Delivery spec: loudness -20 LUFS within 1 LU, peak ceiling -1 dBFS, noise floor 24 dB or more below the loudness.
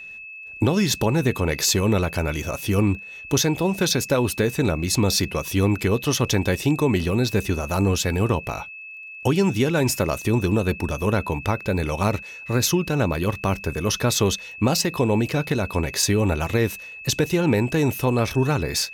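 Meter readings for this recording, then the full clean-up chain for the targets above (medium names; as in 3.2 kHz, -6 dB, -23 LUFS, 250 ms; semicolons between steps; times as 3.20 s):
tick rate 17 per s; steady tone 2.6 kHz; tone level -36 dBFS; loudness -22.0 LUFS; peak level -9.0 dBFS; loudness target -20.0 LUFS
-> de-click; band-stop 2.6 kHz, Q 30; trim +2 dB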